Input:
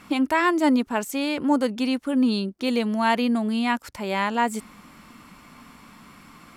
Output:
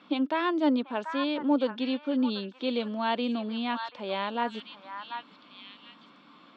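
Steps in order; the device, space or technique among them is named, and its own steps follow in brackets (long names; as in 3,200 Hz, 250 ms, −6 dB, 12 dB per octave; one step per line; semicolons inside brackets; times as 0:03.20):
high-pass filter 160 Hz
kitchen radio (loudspeaker in its box 170–4,200 Hz, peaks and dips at 290 Hz +5 dB, 550 Hz +6 dB, 2,000 Hz −6 dB, 3,500 Hz +9 dB)
echo through a band-pass that steps 737 ms, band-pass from 1,300 Hz, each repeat 1.4 octaves, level −4 dB
level −7.5 dB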